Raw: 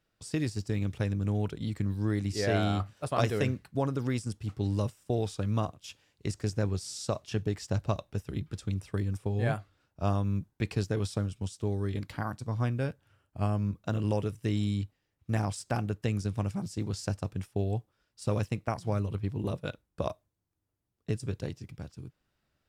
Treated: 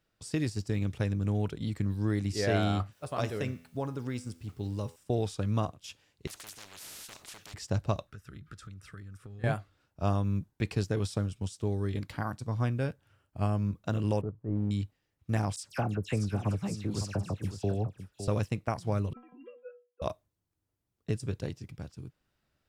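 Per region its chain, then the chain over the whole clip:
2.92–4.96 resonator 83 Hz, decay 0.64 s, mix 50% + requantised 12-bit, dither triangular
6.27–7.54 hard clip -28 dBFS + compressor 2.5:1, threshold -36 dBFS + spectral compressor 10:1
8.07–9.44 compressor 8:1, threshold -42 dBFS + EQ curve 130 Hz 0 dB, 530 Hz -5 dB, 910 Hz -10 dB, 1300 Hz +12 dB, 2400 Hz 0 dB
14.21–14.71 LPF 1100 Hz 24 dB/oct + transient shaper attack -9 dB, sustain -5 dB
15.56–18.28 dispersion lows, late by 80 ms, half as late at 2200 Hz + echo 0.559 s -10 dB
19.13–20.02 sine-wave speech + metallic resonator 240 Hz, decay 0.31 s, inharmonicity 0.008
whole clip: dry

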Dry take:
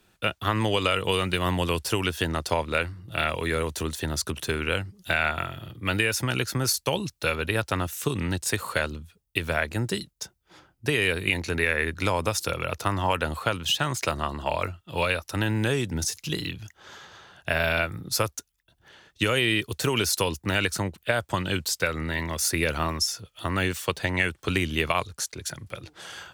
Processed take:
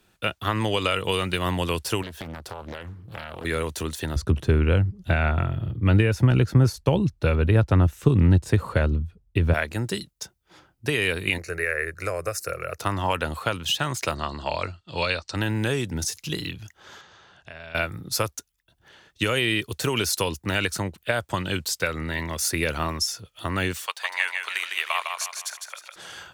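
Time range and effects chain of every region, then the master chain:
2.02–3.45 bell 5100 Hz -8 dB 2.5 oct + compressor 8:1, threshold -31 dBFS + Doppler distortion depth 0.99 ms
4.16–9.54 de-esser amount 35% + tilt -4 dB/oct
11.38–12.79 bell 60 Hz -6 dB 1.7 oct + fixed phaser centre 910 Hz, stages 6
14.15–15.36 elliptic low-pass 8400 Hz + bell 4400 Hz +13.5 dB 0.26 oct
17.01–17.75 LPF 7800 Hz 24 dB/oct + compressor 2:1, threshold -51 dBFS
23.86–25.96 HPF 800 Hz 24 dB/oct + feedback echo 0.155 s, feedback 41%, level -5 dB
whole clip: dry

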